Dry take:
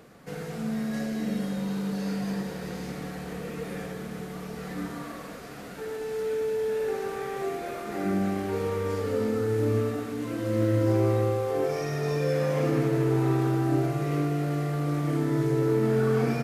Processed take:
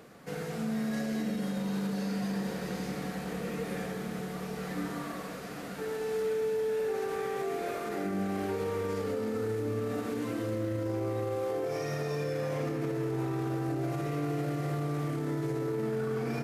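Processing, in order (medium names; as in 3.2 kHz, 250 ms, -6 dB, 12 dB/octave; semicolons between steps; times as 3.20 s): bass shelf 94 Hz -7 dB; echo that smears into a reverb 796 ms, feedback 70%, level -15 dB; peak limiter -25 dBFS, peak gain reduction 11 dB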